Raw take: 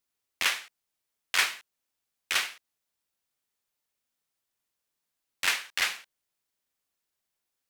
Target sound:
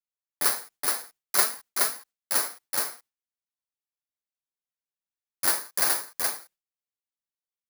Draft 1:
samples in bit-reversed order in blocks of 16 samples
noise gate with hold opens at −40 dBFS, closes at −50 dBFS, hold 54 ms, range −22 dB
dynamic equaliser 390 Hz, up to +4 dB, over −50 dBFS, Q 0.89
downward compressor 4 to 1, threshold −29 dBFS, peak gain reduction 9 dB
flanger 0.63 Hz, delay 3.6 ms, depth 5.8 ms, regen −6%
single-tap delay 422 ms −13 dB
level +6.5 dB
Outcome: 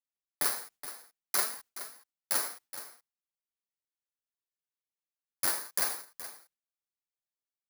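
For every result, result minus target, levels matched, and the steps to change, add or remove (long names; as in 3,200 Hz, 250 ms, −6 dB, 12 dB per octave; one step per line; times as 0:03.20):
downward compressor: peak gain reduction +9 dB; echo-to-direct −10.5 dB
remove: downward compressor 4 to 1, threshold −29 dBFS, peak gain reduction 9 dB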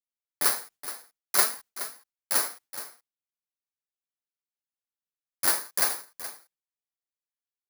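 echo-to-direct −10.5 dB
change: single-tap delay 422 ms −2.5 dB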